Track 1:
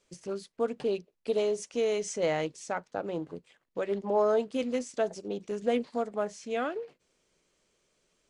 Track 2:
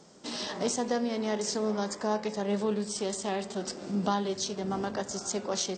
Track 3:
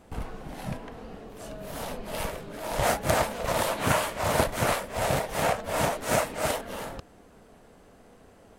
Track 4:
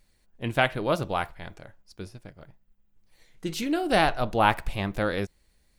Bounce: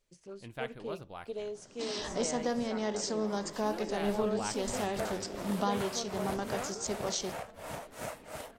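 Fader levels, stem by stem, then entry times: -11.0, -3.0, -15.5, -17.5 dB; 0.00, 1.55, 1.90, 0.00 s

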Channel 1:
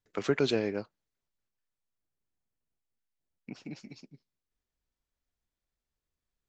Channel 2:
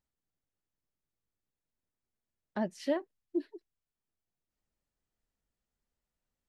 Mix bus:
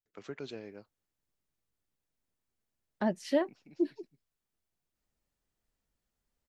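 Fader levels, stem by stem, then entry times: -15.0, +3.0 dB; 0.00, 0.45 s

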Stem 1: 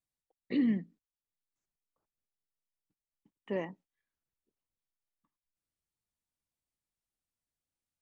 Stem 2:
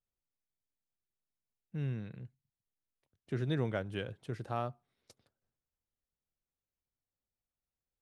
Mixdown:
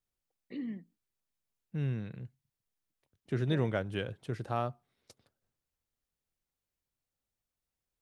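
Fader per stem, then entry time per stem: -10.5, +3.0 dB; 0.00, 0.00 s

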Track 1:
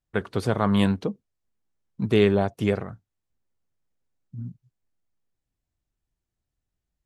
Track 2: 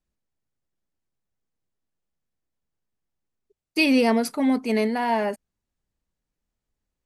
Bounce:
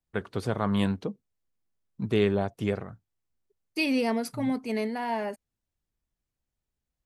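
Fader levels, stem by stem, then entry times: -5.0, -7.0 dB; 0.00, 0.00 s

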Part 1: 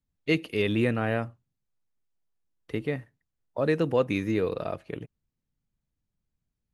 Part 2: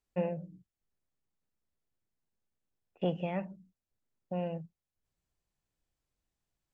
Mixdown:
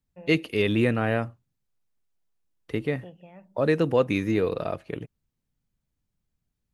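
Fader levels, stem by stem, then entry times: +2.5, -14.0 dB; 0.00, 0.00 s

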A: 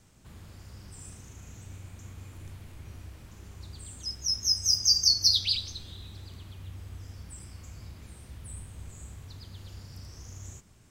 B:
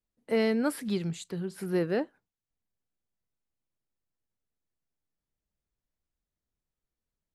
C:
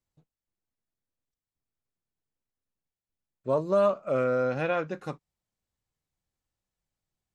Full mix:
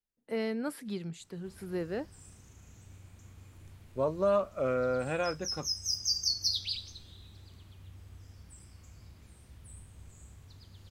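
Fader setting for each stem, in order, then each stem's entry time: -8.0, -7.0, -4.0 dB; 1.20, 0.00, 0.50 s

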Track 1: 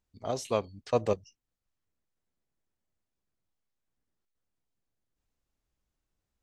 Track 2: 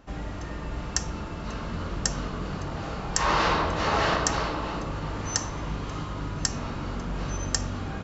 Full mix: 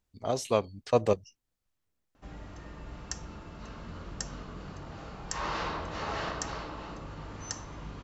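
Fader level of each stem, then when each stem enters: +2.5, -10.5 dB; 0.00, 2.15 s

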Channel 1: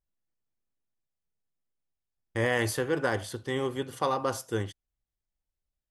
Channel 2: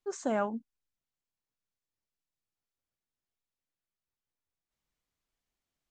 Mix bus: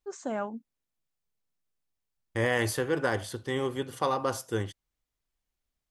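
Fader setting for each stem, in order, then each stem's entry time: 0.0, -2.5 dB; 0.00, 0.00 s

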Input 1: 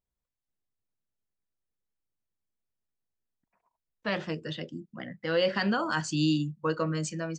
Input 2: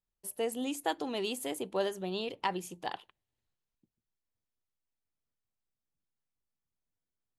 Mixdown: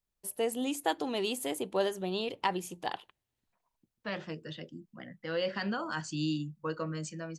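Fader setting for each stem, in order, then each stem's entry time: -6.5, +2.0 dB; 0.00, 0.00 s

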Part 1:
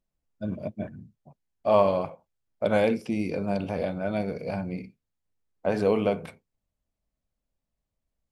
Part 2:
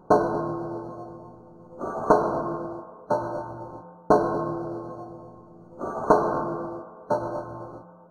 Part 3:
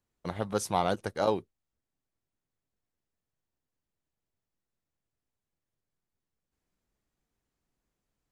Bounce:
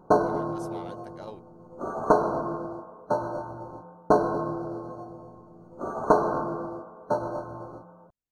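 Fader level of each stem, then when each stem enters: off, -1.5 dB, -15.0 dB; off, 0.00 s, 0.00 s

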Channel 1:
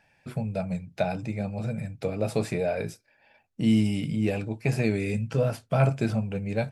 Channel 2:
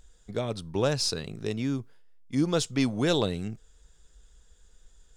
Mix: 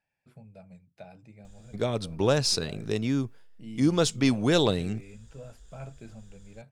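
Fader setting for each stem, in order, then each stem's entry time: -20.0, +2.5 dB; 0.00, 1.45 s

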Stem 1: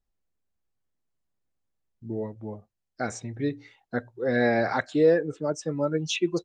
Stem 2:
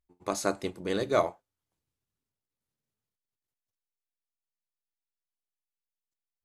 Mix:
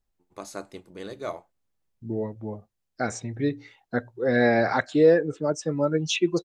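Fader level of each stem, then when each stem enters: +2.5, -8.0 dB; 0.00, 0.10 s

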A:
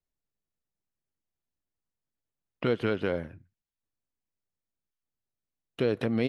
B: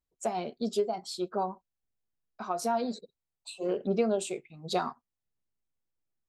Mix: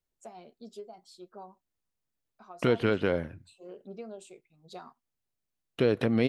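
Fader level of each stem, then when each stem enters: +2.0, -15.5 dB; 0.00, 0.00 s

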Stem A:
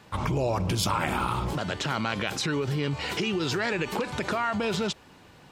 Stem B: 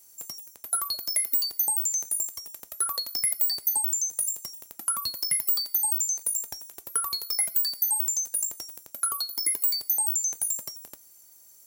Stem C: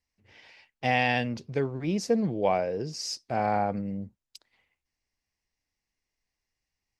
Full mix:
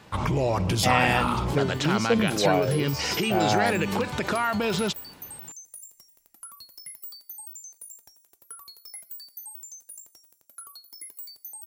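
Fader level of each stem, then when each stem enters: +2.0, -16.0, +2.0 dB; 0.00, 1.55, 0.00 s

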